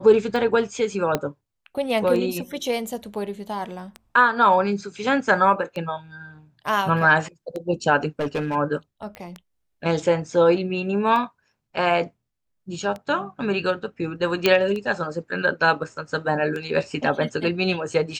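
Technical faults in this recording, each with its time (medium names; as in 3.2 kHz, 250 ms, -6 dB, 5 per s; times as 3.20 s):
tick 33 1/3 rpm
1.15 s: pop -7 dBFS
8.19–8.56 s: clipped -20.5 dBFS
9.15 s: pop -22 dBFS
14.46 s: pop -4 dBFS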